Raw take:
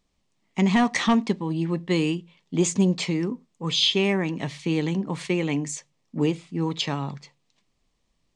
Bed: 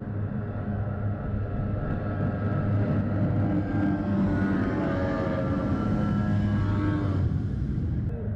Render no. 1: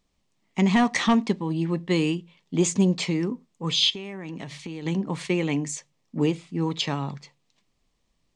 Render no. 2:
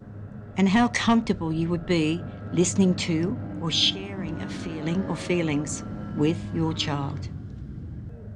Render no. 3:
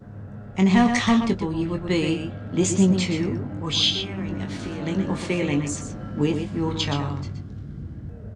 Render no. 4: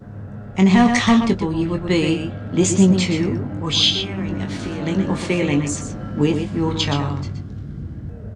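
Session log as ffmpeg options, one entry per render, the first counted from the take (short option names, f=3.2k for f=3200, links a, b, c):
-filter_complex "[0:a]asplit=3[a][b][c];[a]afade=t=out:st=3.89:d=0.02[d];[b]acompressor=threshold=-31dB:ratio=10:attack=3.2:release=140:knee=1:detection=peak,afade=t=in:st=3.89:d=0.02,afade=t=out:st=4.85:d=0.02[e];[c]afade=t=in:st=4.85:d=0.02[f];[d][e][f]amix=inputs=3:normalize=0"
-filter_complex "[1:a]volume=-9dB[a];[0:a][a]amix=inputs=2:normalize=0"
-filter_complex "[0:a]asplit=2[a][b];[b]adelay=21,volume=-7dB[c];[a][c]amix=inputs=2:normalize=0,asplit=2[d][e];[e]adelay=122.4,volume=-7dB,highshelf=f=4k:g=-2.76[f];[d][f]amix=inputs=2:normalize=0"
-af "volume=4.5dB,alimiter=limit=-3dB:level=0:latency=1"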